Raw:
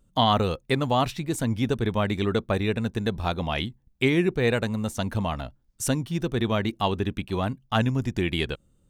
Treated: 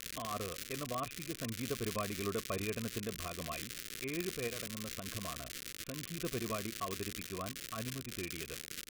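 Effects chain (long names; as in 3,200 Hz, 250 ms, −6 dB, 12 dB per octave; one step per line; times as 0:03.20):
parametric band 2,800 Hz +10.5 dB 2.6 octaves
automatic gain control
brickwall limiter −6.5 dBFS, peak gain reduction 5.5 dB
0:04.47–0:06.18: downward compressor, threshold −20 dBFS, peak gain reduction 7.5 dB
formant resonators in series a
surface crackle 190 per second −32 dBFS
Butterworth band-reject 840 Hz, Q 0.77
one half of a high-frequency compander encoder only
level +7.5 dB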